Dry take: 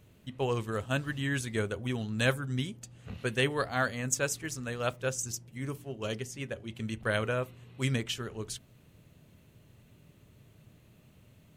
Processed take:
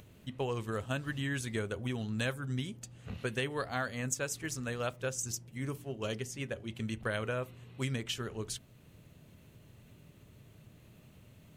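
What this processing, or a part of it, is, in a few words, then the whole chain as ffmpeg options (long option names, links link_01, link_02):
upward and downward compression: -af "acompressor=mode=upward:threshold=-52dB:ratio=2.5,acompressor=threshold=-31dB:ratio=4"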